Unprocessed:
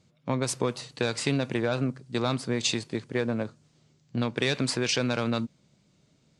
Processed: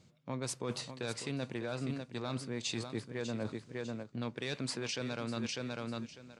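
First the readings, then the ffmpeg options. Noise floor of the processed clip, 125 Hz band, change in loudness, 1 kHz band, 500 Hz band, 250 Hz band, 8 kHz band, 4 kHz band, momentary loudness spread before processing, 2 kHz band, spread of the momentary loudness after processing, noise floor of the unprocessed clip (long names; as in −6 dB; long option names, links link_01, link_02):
−62 dBFS, −9.0 dB, −10.0 dB, −10.0 dB, −10.0 dB, −9.0 dB, −9.0 dB, −9.5 dB, 6 LU, −10.0 dB, 4 LU, −66 dBFS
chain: -af "aecho=1:1:599|1198:0.266|0.0399,areverse,acompressor=threshold=-35dB:ratio=10,areverse,volume=1dB"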